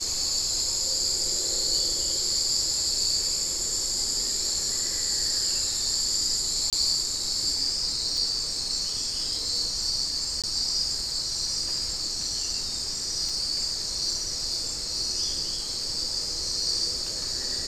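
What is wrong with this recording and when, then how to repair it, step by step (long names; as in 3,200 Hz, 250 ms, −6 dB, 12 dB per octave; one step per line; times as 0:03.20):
0:06.70–0:06.73: drop-out 27 ms
0:08.17: drop-out 2.5 ms
0:10.42–0:10.44: drop-out 17 ms
0:13.29: drop-out 2.7 ms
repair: repair the gap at 0:06.70, 27 ms
repair the gap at 0:08.17, 2.5 ms
repair the gap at 0:10.42, 17 ms
repair the gap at 0:13.29, 2.7 ms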